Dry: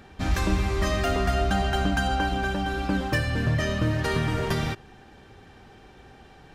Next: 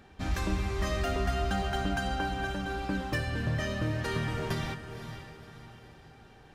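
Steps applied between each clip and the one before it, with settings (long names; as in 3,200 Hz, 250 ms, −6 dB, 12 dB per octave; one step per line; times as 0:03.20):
feedback delay with all-pass diffusion 532 ms, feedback 42%, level −10 dB
level −6.5 dB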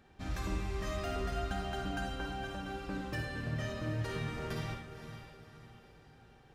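convolution reverb RT60 0.45 s, pre-delay 47 ms, DRR 3 dB
level −8 dB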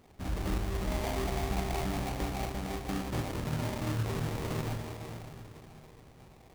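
delay that swaps between a low-pass and a high-pass 108 ms, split 940 Hz, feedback 79%, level −9 dB
sample-rate reduction 1,500 Hz, jitter 20%
level +3.5 dB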